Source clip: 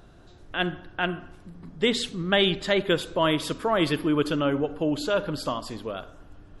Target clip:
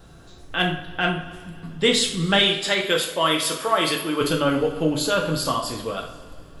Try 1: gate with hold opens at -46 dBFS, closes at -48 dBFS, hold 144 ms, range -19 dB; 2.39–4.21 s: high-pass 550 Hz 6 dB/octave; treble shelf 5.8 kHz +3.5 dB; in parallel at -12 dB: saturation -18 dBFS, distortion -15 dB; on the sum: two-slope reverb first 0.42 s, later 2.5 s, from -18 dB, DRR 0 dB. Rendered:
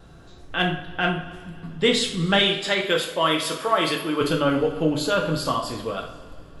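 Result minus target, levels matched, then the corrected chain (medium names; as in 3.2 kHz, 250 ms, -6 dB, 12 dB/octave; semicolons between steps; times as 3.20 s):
8 kHz band -4.5 dB
gate with hold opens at -46 dBFS, closes at -48 dBFS, hold 144 ms, range -19 dB; 2.39–4.21 s: high-pass 550 Hz 6 dB/octave; treble shelf 5.8 kHz +12 dB; in parallel at -12 dB: saturation -18 dBFS, distortion -14 dB; on the sum: two-slope reverb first 0.42 s, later 2.5 s, from -18 dB, DRR 0 dB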